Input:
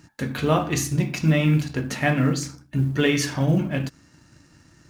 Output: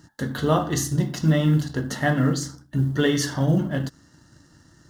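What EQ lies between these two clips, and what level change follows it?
Butterworth band-stop 2400 Hz, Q 2.7; 0.0 dB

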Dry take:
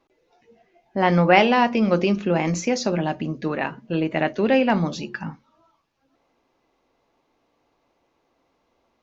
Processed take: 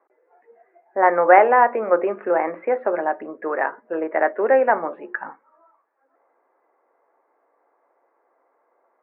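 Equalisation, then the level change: HPF 420 Hz 24 dB/oct; steep low-pass 1900 Hz 48 dB/oct; +5.0 dB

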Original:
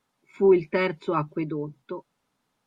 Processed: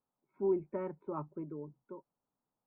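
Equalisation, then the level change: ladder low-pass 1300 Hz, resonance 20%; -8.5 dB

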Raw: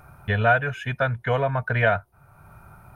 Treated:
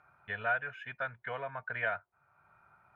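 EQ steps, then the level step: band-pass 1900 Hz, Q 1; tilt -2 dB/oct; -8.0 dB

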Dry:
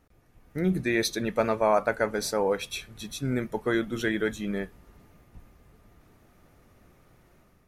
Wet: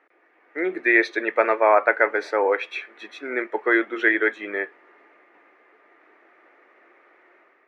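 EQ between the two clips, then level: elliptic high-pass 330 Hz, stop band 80 dB; synth low-pass 2000 Hz, resonance Q 3.1; +5.0 dB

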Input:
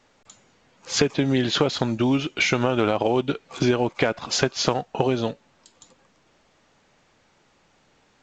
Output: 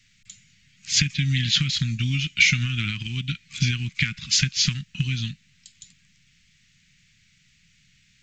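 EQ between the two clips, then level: Chebyshev band-stop 170–2100 Hz, order 3; +5.5 dB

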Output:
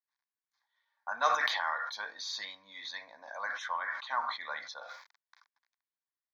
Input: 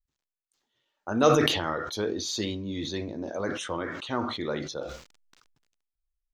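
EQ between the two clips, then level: resonant high-pass 1200 Hz, resonance Q 4.8; LPF 3000 Hz 6 dB/oct; fixed phaser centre 1900 Hz, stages 8; 0.0 dB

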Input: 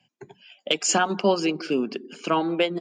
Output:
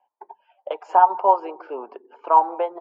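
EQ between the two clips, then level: HPF 470 Hz 24 dB/oct; synth low-pass 910 Hz, resonance Q 8.2; -2.0 dB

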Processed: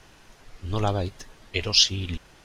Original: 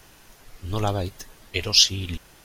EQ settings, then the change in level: air absorption 57 m; 0.0 dB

